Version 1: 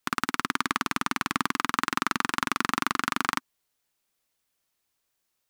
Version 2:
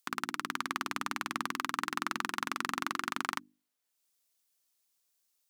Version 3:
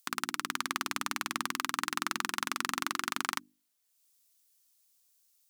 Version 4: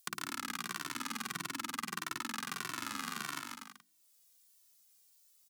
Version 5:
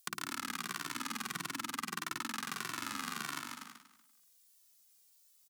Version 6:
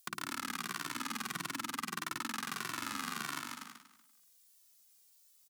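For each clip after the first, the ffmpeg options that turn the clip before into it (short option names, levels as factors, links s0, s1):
-filter_complex "[0:a]highpass=160,bandreject=f=50:t=h:w=6,bandreject=f=100:t=h:w=6,bandreject=f=150:t=h:w=6,bandreject=f=200:t=h:w=6,bandreject=f=250:t=h:w=6,bandreject=f=300:t=h:w=6,bandreject=f=350:t=h:w=6,acrossover=split=3900[s0][s1];[s1]acompressor=mode=upward:threshold=0.00112:ratio=2.5[s2];[s0][s2]amix=inputs=2:normalize=0,volume=0.422"
-af "highshelf=f=3200:g=9,volume=0.891"
-filter_complex "[0:a]acrossover=split=200[s0][s1];[s1]acompressor=threshold=0.0158:ratio=10[s2];[s0][s2]amix=inputs=2:normalize=0,asplit=2[s3][s4];[s4]aecho=0:1:140|245|323.8|382.8|427.1:0.631|0.398|0.251|0.158|0.1[s5];[s3][s5]amix=inputs=2:normalize=0,asplit=2[s6][s7];[s7]adelay=2.1,afreqshift=-1.6[s8];[s6][s8]amix=inputs=2:normalize=1,volume=1.58"
-af "aecho=1:1:239|478:0.178|0.0409"
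-af "volume=26.6,asoftclip=hard,volume=0.0376,volume=1.12"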